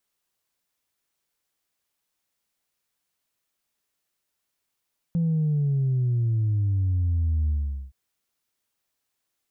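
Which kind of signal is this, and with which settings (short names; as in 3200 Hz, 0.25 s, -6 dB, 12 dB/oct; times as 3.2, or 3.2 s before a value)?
sub drop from 170 Hz, over 2.77 s, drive 0 dB, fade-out 0.43 s, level -20.5 dB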